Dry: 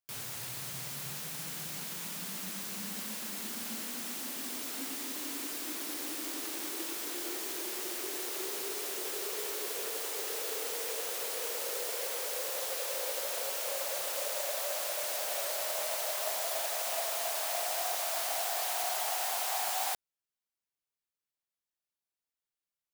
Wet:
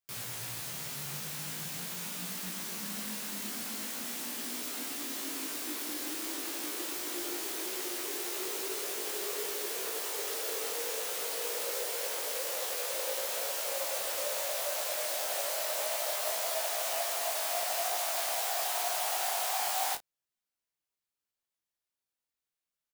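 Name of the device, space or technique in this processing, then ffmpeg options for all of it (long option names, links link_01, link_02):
double-tracked vocal: -filter_complex "[0:a]asplit=2[link_01][link_02];[link_02]adelay=34,volume=-12dB[link_03];[link_01][link_03]amix=inputs=2:normalize=0,flanger=delay=16.5:depth=3.3:speed=0.43,volume=4dB"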